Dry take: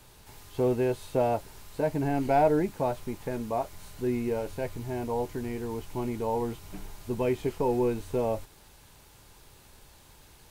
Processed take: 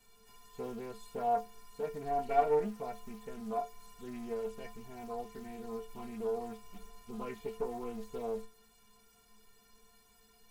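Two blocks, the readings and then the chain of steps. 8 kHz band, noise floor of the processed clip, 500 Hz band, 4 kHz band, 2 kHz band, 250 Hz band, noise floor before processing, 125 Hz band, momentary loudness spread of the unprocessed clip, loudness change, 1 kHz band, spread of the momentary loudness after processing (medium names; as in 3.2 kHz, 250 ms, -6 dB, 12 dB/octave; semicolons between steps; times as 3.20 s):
-9.5 dB, -65 dBFS, -8.5 dB, -9.0 dB, -10.5 dB, -12.5 dB, -56 dBFS, -18.5 dB, 10 LU, -8.5 dB, -4.0 dB, 17 LU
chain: inharmonic resonator 210 Hz, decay 0.29 s, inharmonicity 0.03; loudspeaker Doppler distortion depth 0.36 ms; trim +4 dB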